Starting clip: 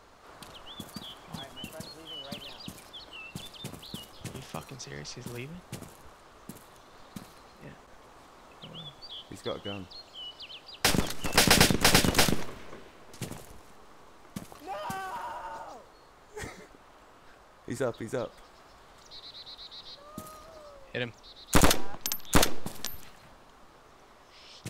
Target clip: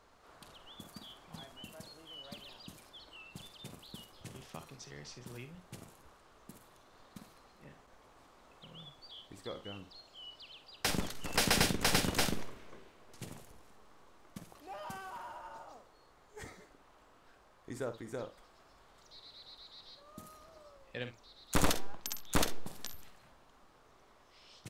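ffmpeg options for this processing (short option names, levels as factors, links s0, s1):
-af "aecho=1:1:49|67:0.266|0.15,volume=0.376"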